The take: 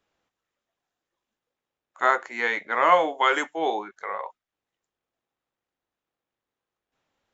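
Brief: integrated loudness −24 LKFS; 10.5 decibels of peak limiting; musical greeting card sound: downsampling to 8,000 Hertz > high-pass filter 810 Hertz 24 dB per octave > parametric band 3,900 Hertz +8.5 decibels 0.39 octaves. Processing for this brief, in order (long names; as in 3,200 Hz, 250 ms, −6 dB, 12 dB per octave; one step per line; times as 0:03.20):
brickwall limiter −16 dBFS
downsampling to 8,000 Hz
high-pass filter 810 Hz 24 dB per octave
parametric band 3,900 Hz +8.5 dB 0.39 octaves
level +6 dB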